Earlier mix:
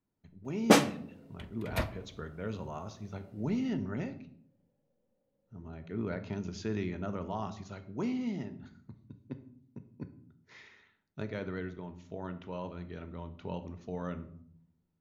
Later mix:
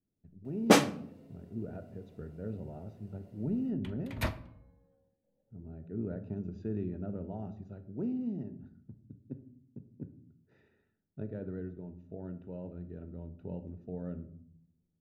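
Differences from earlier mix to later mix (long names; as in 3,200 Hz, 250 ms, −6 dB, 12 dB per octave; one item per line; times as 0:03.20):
speech: add moving average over 41 samples
second sound: entry +2.45 s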